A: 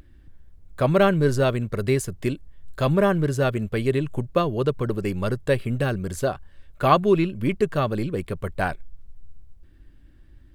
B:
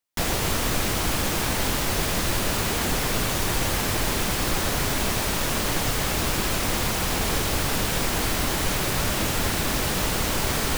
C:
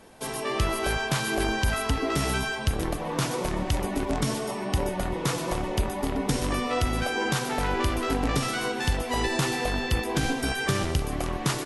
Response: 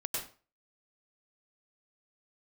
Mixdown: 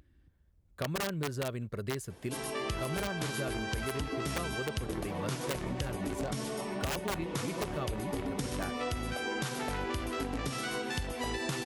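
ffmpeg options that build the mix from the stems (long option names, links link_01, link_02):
-filter_complex "[0:a]aeval=exprs='(mod(3.55*val(0)+1,2)-1)/3.55':channel_layout=same,volume=-10.5dB[link_01];[2:a]equalizer=frequency=890:width=1.5:gain=-2.5,adelay=2100,volume=-4dB[link_02];[link_01][link_02]amix=inputs=2:normalize=0,highpass=47,acompressor=threshold=-31dB:ratio=6"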